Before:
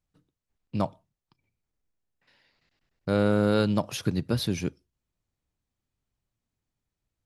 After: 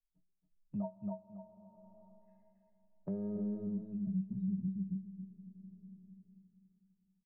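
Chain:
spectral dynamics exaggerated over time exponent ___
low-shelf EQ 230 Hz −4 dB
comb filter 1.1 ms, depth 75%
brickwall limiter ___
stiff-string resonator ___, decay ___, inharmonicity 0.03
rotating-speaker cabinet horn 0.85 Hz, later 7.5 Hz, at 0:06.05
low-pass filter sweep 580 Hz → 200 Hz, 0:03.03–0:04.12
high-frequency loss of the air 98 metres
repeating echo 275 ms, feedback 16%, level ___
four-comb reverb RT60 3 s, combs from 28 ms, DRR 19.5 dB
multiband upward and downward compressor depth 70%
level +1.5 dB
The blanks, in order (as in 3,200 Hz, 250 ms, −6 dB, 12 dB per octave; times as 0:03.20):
1.5, −24 dBFS, 190 Hz, 0.2 s, −4.5 dB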